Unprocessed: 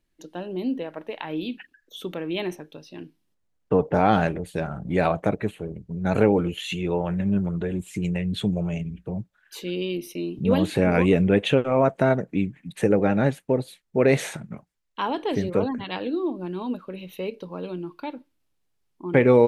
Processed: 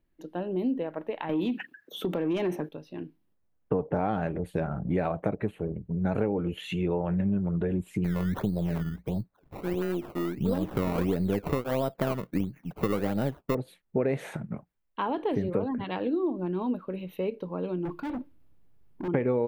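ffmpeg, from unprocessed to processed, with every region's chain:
ffmpeg -i in.wav -filter_complex "[0:a]asettb=1/sr,asplit=3[link_01][link_02][link_03];[link_01]atrim=end=1.294[link_04];[link_02]atrim=start=1.29:end=2.69,asetpts=PTS-STARTPTS,afade=type=in:duration=0.004:curve=qsin,afade=type=out:start_time=1.396:duration=0.004:curve=qsin,highpass=frequency=120:width=0.5412,highpass=frequency=120:width=1.3066,acompressor=threshold=-33dB:ratio=2.5:attack=3.2:release=140:knee=1:detection=peak,aeval=exprs='0.0841*sin(PI/2*1.78*val(0)/0.0841)':channel_layout=same[link_05];[link_03]atrim=start=2.686[link_06];[link_04][link_05]acrossfade=duration=0.004:curve1=hsin:curve2=qsin[link_07];[link_07][link_06]acrossfade=duration=0.004:curve1=qsin:curve2=hsin,asettb=1/sr,asplit=3[link_08][link_09][link_10];[link_08]atrim=end=8.044[link_11];[link_09]atrim=start=8.04:end=13.55,asetpts=PTS-STARTPTS,afade=type=in:duration=0.004:curve=qsin,afade=type=out:start_time=5.506:duration=0.004:curve=qsin,aeval=exprs='if(lt(val(0),0),0.708*val(0),val(0))':channel_layout=same,acrusher=samples=19:mix=1:aa=0.000001:lfo=1:lforange=19:lforate=1.5[link_12];[link_10]atrim=start=13.546[link_13];[link_11][link_12]acrossfade=duration=0.004:curve1=hsin:curve2=qsin[link_14];[link_14][link_13]acrossfade=duration=0.004:curve1=qsin:curve2=hsin,asettb=1/sr,asplit=3[link_15][link_16][link_17];[link_15]atrim=end=17.854[link_18];[link_16]atrim=start=17.85:end=19.08,asetpts=PTS-STARTPTS,afade=type=in:duration=0.004:curve=qsin,afade=type=out:start_time=1.226:duration=0.004:curve=qsin,lowshelf=frequency=300:gain=10,acontrast=50,volume=32dB,asoftclip=hard,volume=-32dB[link_19];[link_17]atrim=start=19.076[link_20];[link_18][link_19]acrossfade=duration=0.004:curve1=hsin:curve2=qsin[link_21];[link_21][link_20]acrossfade=duration=0.004:curve1=qsin:curve2=hsin,acompressor=threshold=-25dB:ratio=5,equalizer=frequency=6400:width=0.44:gain=-14.5,volume=1.5dB" out.wav

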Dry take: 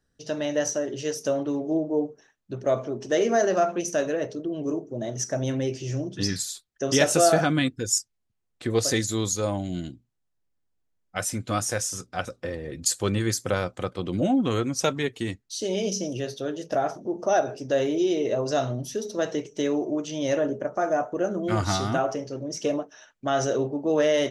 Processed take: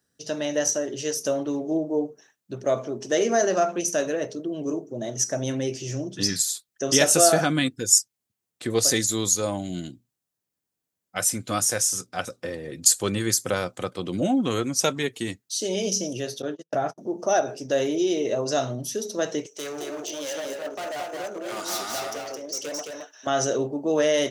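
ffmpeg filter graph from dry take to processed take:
ffmpeg -i in.wav -filter_complex "[0:a]asettb=1/sr,asplit=3[link_01][link_02][link_03];[link_01]atrim=end=16.424[link_04];[link_02]atrim=start=16.42:end=16.98,asetpts=PTS-STARTPTS,afade=type=in:duration=0.004:curve=qsin,afade=type=out:start_time=0.556:duration=0.004:curve=qsin,asubboost=boost=10.5:cutoff=210,lowpass=frequency=3500:poles=1,agate=range=-44dB:threshold=-33dB:ratio=16:release=100:detection=peak[link_05];[link_03]atrim=start=16.976[link_06];[link_04][link_05]acrossfade=duration=0.004:curve1=hsin:curve2=qsin[link_07];[link_07][link_06]acrossfade=duration=0.004:curve1=qsin:curve2=hsin,asettb=1/sr,asplit=3[link_08][link_09][link_10];[link_08]atrim=end=19.464[link_11];[link_09]atrim=start=19.46:end=23.27,asetpts=PTS-STARTPTS,afade=type=in:duration=0.004:curve=qsin,afade=type=out:start_time=3.806:duration=0.004:curve=qsin,highpass=500,asoftclip=type=hard:threshold=-31dB,aecho=1:1:217:0.668,atrim=end_sample=168021[link_12];[link_10]atrim=start=23.266[link_13];[link_11][link_12]acrossfade=duration=0.004:curve1=hsin:curve2=qsin[link_14];[link_14][link_13]acrossfade=duration=0.004:curve1=qsin:curve2=hsin,highpass=120,highshelf=frequency=5900:gain=11.5" out.wav

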